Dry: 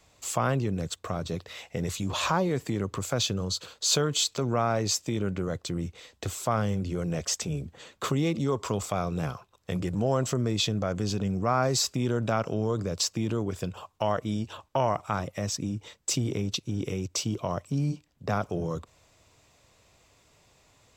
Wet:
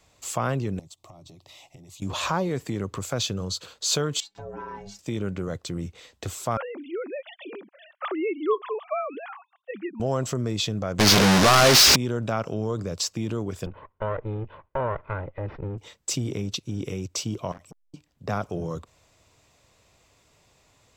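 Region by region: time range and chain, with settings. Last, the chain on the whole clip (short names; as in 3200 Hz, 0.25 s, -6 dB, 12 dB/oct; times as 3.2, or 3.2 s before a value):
0.79–2.02 compressor 8:1, threshold -41 dBFS + fixed phaser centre 310 Hz, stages 8
4.2–4.99 LPF 2500 Hz 6 dB/oct + ring modulator 300 Hz + metallic resonator 100 Hz, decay 0.24 s, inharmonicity 0.008
6.57–10 sine-wave speech + HPF 330 Hz 24 dB/oct + notch 980 Hz, Q 19
10.99–11.96 delta modulation 32 kbps, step -24.5 dBFS + tilt +2.5 dB/oct + sample leveller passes 5
13.66–15.78 minimum comb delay 2 ms + Gaussian blur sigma 3.9 samples
17.52–17.94 overloaded stage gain 34 dB + core saturation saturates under 370 Hz
whole clip: dry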